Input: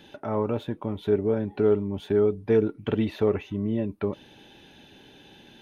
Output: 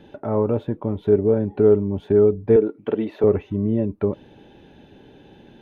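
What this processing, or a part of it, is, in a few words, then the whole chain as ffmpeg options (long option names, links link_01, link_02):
through cloth: -filter_complex "[0:a]lowshelf=frequency=180:gain=4.5,highshelf=frequency=2300:gain=-15,asettb=1/sr,asplit=3[link_01][link_02][link_03];[link_01]atrim=end=2.564[link_04];[link_02]atrim=start=2.56:end=3.24,asetpts=PTS-STARTPTS,afade=type=in:duration=0.004:curve=qsin,afade=type=out:start_time=0.676:duration=0.004:curve=qsin,highpass=300[link_05];[link_03]atrim=start=3.236[link_06];[link_04][link_05]acrossfade=duration=0.004:curve1=hsin:curve2=qsin[link_07];[link_07][link_06]acrossfade=duration=0.004:curve1=qsin:curve2=hsin,equalizer=frequency=480:width_type=o:width=0.79:gain=3.5,volume=3.5dB"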